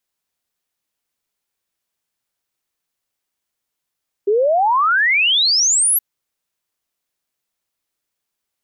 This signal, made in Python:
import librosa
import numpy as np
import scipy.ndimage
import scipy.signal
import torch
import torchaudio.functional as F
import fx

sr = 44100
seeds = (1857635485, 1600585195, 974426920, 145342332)

y = fx.ess(sr, length_s=1.72, from_hz=390.0, to_hz=12000.0, level_db=-12.0)